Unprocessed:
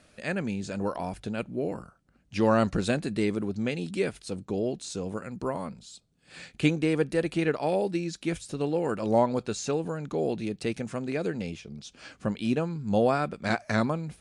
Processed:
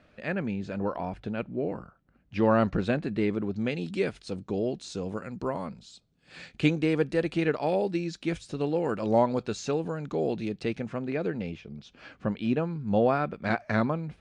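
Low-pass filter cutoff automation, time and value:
0:03.21 2,800 Hz
0:03.90 5,500 Hz
0:10.45 5,500 Hz
0:10.92 3,000 Hz

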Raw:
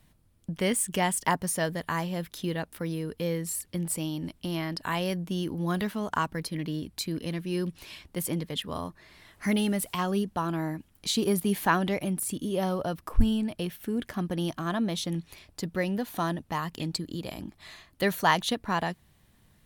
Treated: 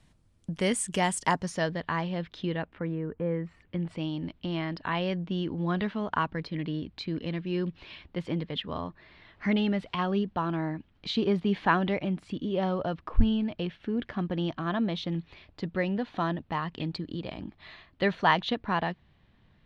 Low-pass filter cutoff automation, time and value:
low-pass filter 24 dB per octave
0:01.23 8,800 Hz
0:01.84 4,100 Hz
0:02.41 4,100 Hz
0:03.16 1,600 Hz
0:04.02 3,800 Hz

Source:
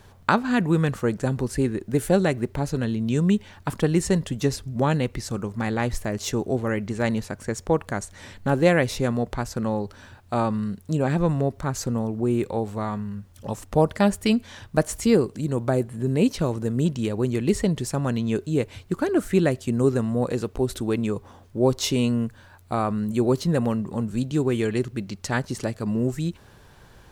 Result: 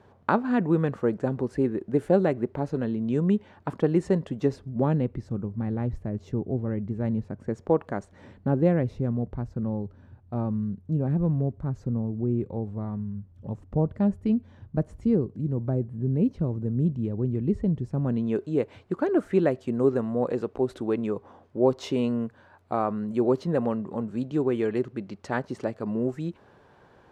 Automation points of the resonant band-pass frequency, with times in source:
resonant band-pass, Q 0.57
0:04.42 430 Hz
0:05.50 120 Hz
0:07.20 120 Hz
0:07.80 460 Hz
0:09.04 110 Hz
0:17.90 110 Hz
0:18.37 560 Hz

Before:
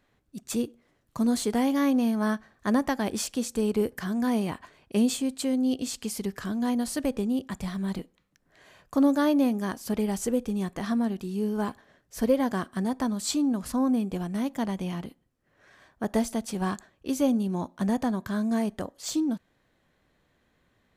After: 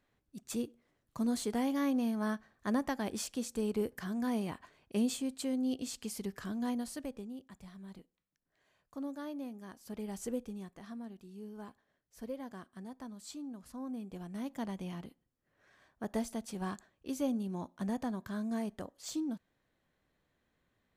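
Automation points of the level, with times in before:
0:06.69 −8 dB
0:07.41 −19 dB
0:09.64 −19 dB
0:10.32 −10 dB
0:10.77 −18.5 dB
0:13.72 −18.5 dB
0:14.55 −9.5 dB

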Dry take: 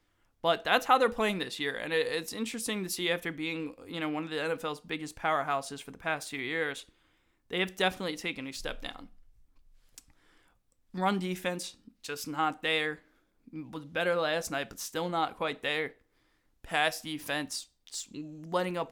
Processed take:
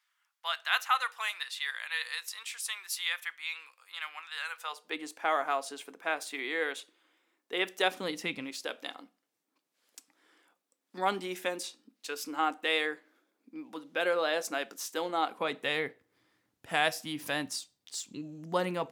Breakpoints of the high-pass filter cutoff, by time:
high-pass filter 24 dB per octave
0:04.57 1,100 Hz
0:04.97 300 Hz
0:07.86 300 Hz
0:08.36 95 Hz
0:08.53 270 Hz
0:15.21 270 Hz
0:15.77 99 Hz

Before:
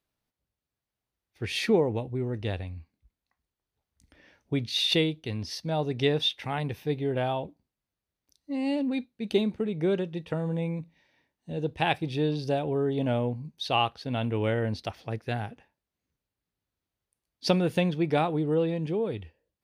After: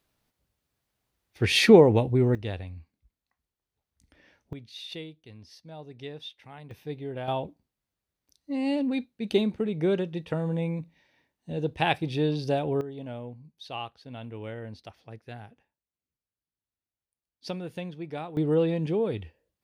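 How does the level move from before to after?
+8.5 dB
from 0:02.35 −2 dB
from 0:04.53 −15 dB
from 0:06.71 −7 dB
from 0:07.28 +1 dB
from 0:12.81 −11 dB
from 0:18.37 +2 dB

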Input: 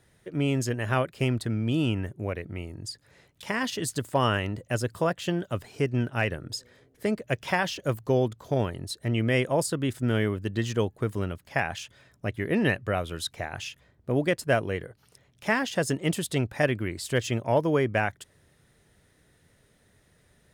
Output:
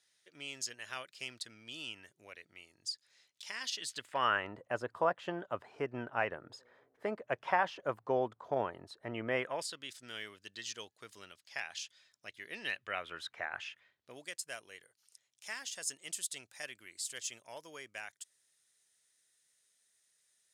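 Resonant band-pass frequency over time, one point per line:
resonant band-pass, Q 1.4
0:03.68 5,200 Hz
0:04.50 960 Hz
0:09.35 960 Hz
0:09.78 5,000 Hz
0:12.64 5,000 Hz
0:13.14 1,500 Hz
0:13.68 1,500 Hz
0:14.26 7,400 Hz

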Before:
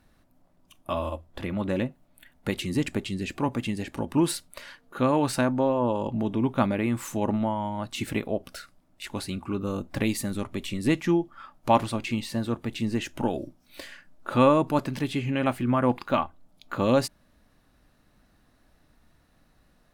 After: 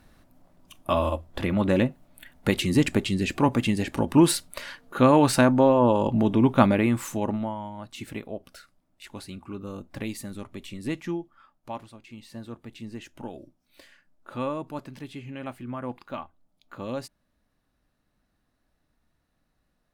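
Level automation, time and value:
0:06.73 +5.5 dB
0:07.73 −7 dB
0:11.08 −7 dB
0:12.00 −19 dB
0:12.36 −11 dB

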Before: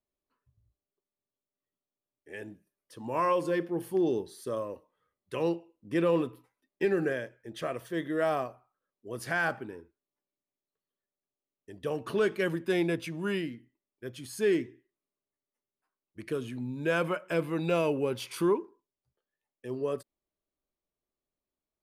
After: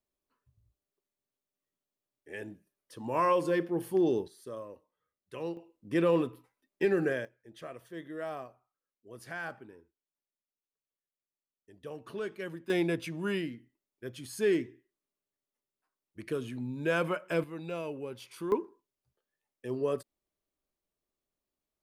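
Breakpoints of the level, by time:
+0.5 dB
from 0:04.28 −8 dB
from 0:05.57 0 dB
from 0:07.25 −10 dB
from 0:12.70 −1 dB
from 0:17.44 −10 dB
from 0:18.52 +1 dB

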